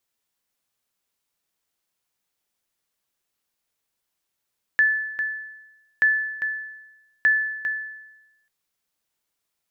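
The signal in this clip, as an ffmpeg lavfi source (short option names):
-f lavfi -i "aevalsrc='0.251*(sin(2*PI*1740*mod(t,1.23))*exp(-6.91*mod(t,1.23)/1.02)+0.335*sin(2*PI*1740*max(mod(t,1.23)-0.4,0))*exp(-6.91*max(mod(t,1.23)-0.4,0)/1.02))':d=3.69:s=44100"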